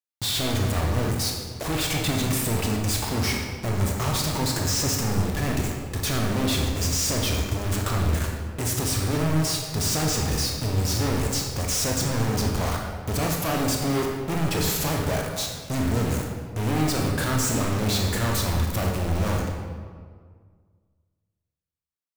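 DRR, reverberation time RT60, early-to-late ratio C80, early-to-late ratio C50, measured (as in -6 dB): -0.5 dB, 1.8 s, 4.0 dB, 2.0 dB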